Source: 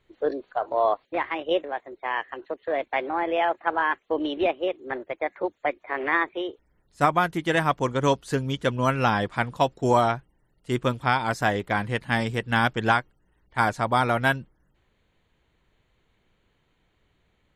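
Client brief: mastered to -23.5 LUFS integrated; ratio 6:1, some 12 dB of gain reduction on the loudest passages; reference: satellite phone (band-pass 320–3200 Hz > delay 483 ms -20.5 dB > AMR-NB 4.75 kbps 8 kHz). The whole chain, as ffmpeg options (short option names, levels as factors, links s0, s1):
-af "acompressor=threshold=0.0355:ratio=6,highpass=320,lowpass=3200,aecho=1:1:483:0.0944,volume=4.73" -ar 8000 -c:a libopencore_amrnb -b:a 4750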